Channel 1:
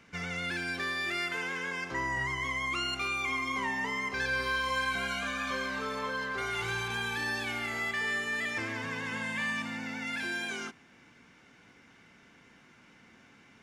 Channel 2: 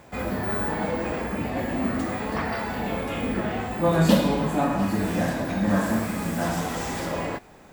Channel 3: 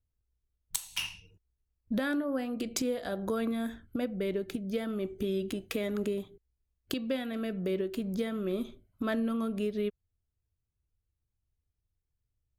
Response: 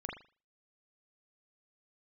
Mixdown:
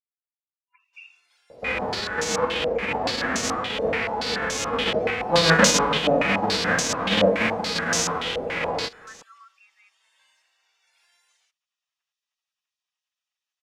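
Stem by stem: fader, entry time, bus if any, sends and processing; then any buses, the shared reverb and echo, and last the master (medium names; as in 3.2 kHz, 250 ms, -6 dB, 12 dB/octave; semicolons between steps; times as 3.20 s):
-19.5 dB, 0.80 s, no send, spectral gate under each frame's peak -15 dB weak; high-pass 1.2 kHz 12 dB/octave
0.0 dB, 1.50 s, no send, formants flattened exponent 0.3; peaking EQ 470 Hz +15 dB 0.21 oct; step-sequenced low-pass 7 Hz 590–6300 Hz
-5.5 dB, 0.00 s, no send, FFT band-pass 980–2800 Hz; loudest bins only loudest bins 16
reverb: none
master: none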